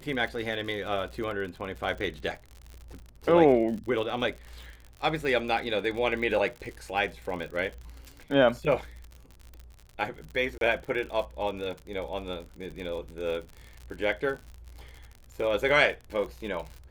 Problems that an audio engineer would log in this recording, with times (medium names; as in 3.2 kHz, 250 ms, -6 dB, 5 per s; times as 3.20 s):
crackle 62 per s -36 dBFS
10.58–10.61 s: dropout 32 ms